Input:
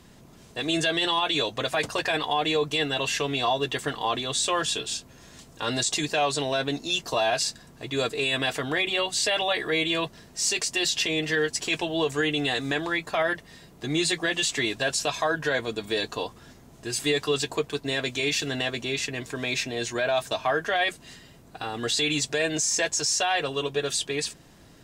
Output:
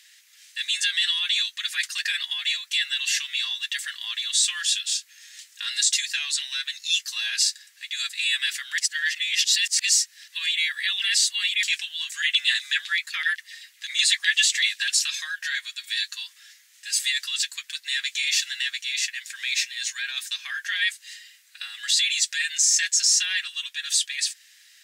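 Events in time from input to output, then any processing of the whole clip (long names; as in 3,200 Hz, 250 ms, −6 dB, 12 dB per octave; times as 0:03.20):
0:08.78–0:11.63: reverse
0:12.22–0:15.07: auto-filter high-pass saw down 7.9 Hz 300–3,700 Hz
whole clip: elliptic high-pass filter 1,800 Hz, stop band 80 dB; dynamic equaliser 2,500 Hz, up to −4 dB, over −42 dBFS, Q 1.2; level +7 dB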